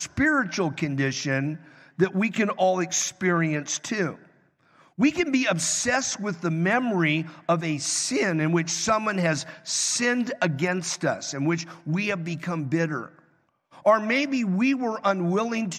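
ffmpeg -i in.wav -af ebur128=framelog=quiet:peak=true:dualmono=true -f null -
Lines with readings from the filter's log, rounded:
Integrated loudness:
  I:         -21.6 LUFS
  Threshold: -32.0 LUFS
Loudness range:
  LRA:         2.3 LU
  Threshold: -42.1 LUFS
  LRA low:   -23.3 LUFS
  LRA high:  -21.0 LUFS
True peak:
  Peak:       -7.9 dBFS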